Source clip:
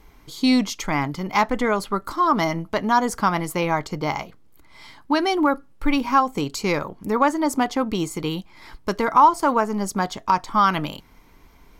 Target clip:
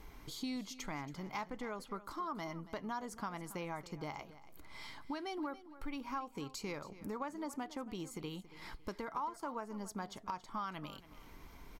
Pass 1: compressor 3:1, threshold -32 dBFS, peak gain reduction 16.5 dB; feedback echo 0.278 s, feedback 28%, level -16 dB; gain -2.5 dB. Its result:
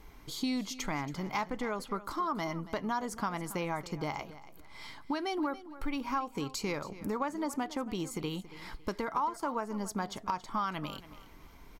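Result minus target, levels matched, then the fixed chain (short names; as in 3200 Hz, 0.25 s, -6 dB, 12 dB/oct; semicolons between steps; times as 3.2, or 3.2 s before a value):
compressor: peak gain reduction -7.5 dB
compressor 3:1, threshold -43.5 dBFS, peak gain reduction 24 dB; feedback echo 0.278 s, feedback 28%, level -16 dB; gain -2.5 dB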